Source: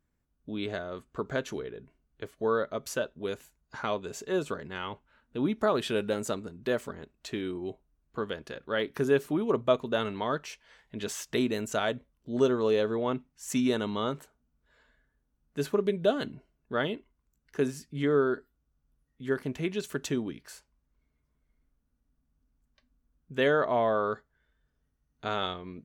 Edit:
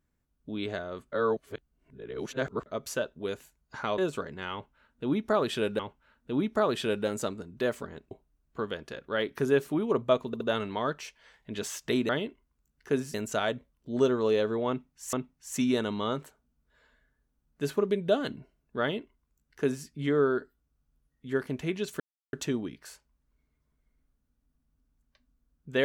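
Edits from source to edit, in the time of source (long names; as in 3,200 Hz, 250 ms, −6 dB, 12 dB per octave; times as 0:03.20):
0:01.12–0:02.66: reverse
0:03.98–0:04.31: remove
0:04.85–0:06.12: repeat, 2 plays
0:07.17–0:07.70: remove
0:09.86: stutter 0.07 s, 3 plays
0:13.09–0:13.53: repeat, 2 plays
0:16.77–0:17.82: duplicate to 0:11.54
0:19.96: splice in silence 0.33 s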